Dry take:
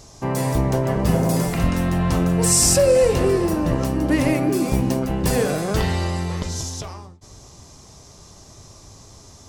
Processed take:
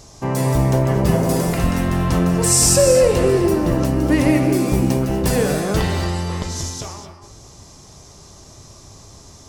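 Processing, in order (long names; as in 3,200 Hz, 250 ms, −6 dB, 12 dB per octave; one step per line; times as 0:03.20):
reverb whose tail is shaped and stops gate 270 ms rising, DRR 7.5 dB
level +1.5 dB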